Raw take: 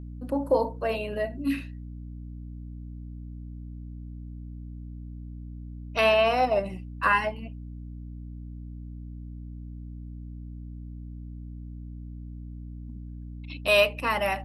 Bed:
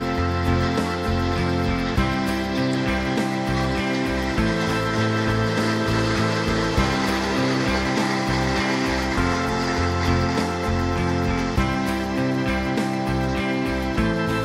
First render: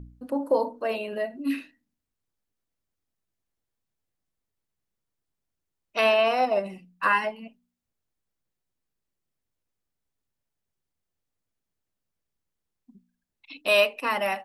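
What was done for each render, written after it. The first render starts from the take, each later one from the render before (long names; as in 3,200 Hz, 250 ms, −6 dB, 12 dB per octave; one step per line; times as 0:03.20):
hum removal 60 Hz, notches 5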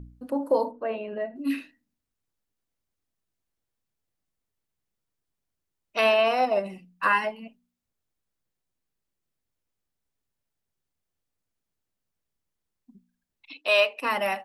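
0:00.71–0:01.36: high-frequency loss of the air 500 metres
0:13.53–0:13.99: three-way crossover with the lows and the highs turned down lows −18 dB, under 380 Hz, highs −14 dB, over 7,500 Hz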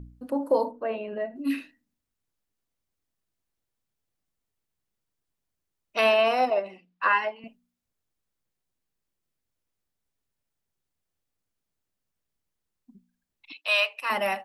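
0:06.50–0:07.44: three-way crossover with the lows and the highs turned down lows −18 dB, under 300 Hz, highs −23 dB, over 5,100 Hz
0:13.52–0:14.10: high-pass filter 1,000 Hz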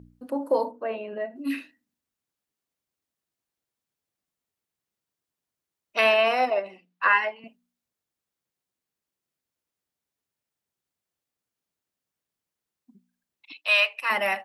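high-pass filter 190 Hz 6 dB per octave
dynamic equaliser 2,000 Hz, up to +6 dB, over −40 dBFS, Q 1.8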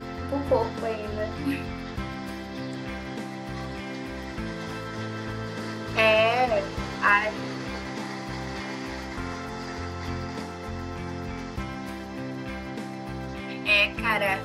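mix in bed −12 dB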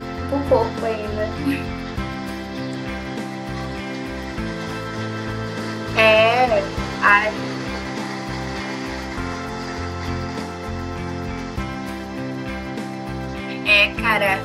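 level +6.5 dB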